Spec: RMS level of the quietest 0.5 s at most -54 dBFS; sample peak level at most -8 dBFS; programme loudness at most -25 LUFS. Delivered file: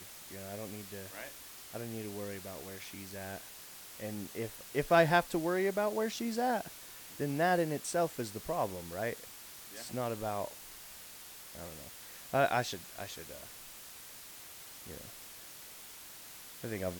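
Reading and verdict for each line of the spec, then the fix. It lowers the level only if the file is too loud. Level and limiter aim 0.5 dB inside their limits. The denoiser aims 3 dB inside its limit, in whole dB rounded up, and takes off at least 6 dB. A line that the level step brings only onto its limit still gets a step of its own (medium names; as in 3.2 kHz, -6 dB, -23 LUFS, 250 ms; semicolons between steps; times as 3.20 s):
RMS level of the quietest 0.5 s -50 dBFS: fail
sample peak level -15.5 dBFS: pass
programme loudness -35.5 LUFS: pass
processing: noise reduction 7 dB, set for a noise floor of -50 dBFS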